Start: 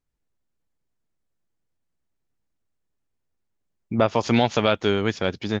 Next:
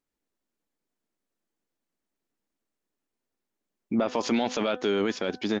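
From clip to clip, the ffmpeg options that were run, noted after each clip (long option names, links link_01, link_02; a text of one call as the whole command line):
ffmpeg -i in.wav -af "lowshelf=frequency=170:width_type=q:width=1.5:gain=-11.5,bandreject=frequency=251.4:width_type=h:width=4,bandreject=frequency=502.8:width_type=h:width=4,bandreject=frequency=754.2:width_type=h:width=4,bandreject=frequency=1005.6:width_type=h:width=4,bandreject=frequency=1257:width_type=h:width=4,bandreject=frequency=1508.4:width_type=h:width=4,bandreject=frequency=1759.8:width_type=h:width=4,alimiter=limit=-16dB:level=0:latency=1:release=13" out.wav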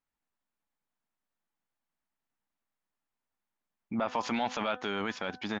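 ffmpeg -i in.wav -af "firequalizer=gain_entry='entry(120,0);entry(370,-10);entry(830,4);entry(4900,-5)':delay=0.05:min_phase=1,volume=-3dB" out.wav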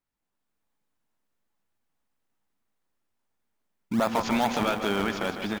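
ffmpeg -i in.wav -filter_complex "[0:a]dynaudnorm=framelen=150:gausssize=5:maxgain=4dB,asplit=2[link_01][link_02];[link_02]acrusher=samples=30:mix=1:aa=0.000001:lfo=1:lforange=30:lforate=2.4,volume=-6.5dB[link_03];[link_01][link_03]amix=inputs=2:normalize=0,aecho=1:1:152|304|456|608|760|912|1064:0.355|0.202|0.115|0.0657|0.0375|0.0213|0.0122" out.wav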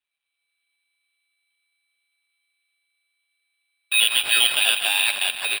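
ffmpeg -i in.wav -filter_complex "[0:a]asplit=2[link_01][link_02];[link_02]acrusher=bits=4:mix=0:aa=0.000001,volume=-4.5dB[link_03];[link_01][link_03]amix=inputs=2:normalize=0,lowpass=frequency=3400:width_type=q:width=0.5098,lowpass=frequency=3400:width_type=q:width=0.6013,lowpass=frequency=3400:width_type=q:width=0.9,lowpass=frequency=3400:width_type=q:width=2.563,afreqshift=-4000,acrusher=samples=7:mix=1:aa=0.000001,volume=2dB" out.wav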